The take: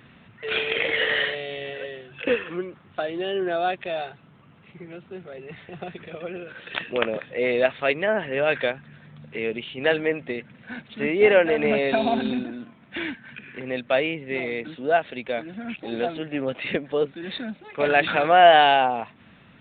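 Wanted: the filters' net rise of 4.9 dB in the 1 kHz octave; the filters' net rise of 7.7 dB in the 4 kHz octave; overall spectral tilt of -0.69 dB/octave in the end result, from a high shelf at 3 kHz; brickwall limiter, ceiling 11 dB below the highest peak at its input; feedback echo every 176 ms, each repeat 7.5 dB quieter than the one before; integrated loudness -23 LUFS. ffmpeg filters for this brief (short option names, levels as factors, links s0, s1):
-af "equalizer=f=1000:t=o:g=7,highshelf=f=3000:g=9,equalizer=f=4000:t=o:g=4,alimiter=limit=0.376:level=0:latency=1,aecho=1:1:176|352|528|704|880:0.422|0.177|0.0744|0.0312|0.0131,volume=0.841"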